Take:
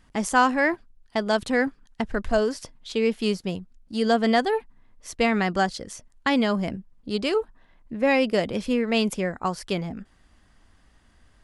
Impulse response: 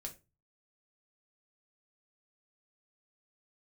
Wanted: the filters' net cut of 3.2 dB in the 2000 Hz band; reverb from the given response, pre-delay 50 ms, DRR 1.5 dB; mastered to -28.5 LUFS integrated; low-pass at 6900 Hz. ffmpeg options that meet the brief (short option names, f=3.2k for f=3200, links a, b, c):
-filter_complex "[0:a]lowpass=6.9k,equalizer=f=2k:t=o:g=-4,asplit=2[a][b];[1:a]atrim=start_sample=2205,adelay=50[c];[b][c]afir=irnorm=-1:irlink=0,volume=2dB[d];[a][d]amix=inputs=2:normalize=0,volume=-5.5dB"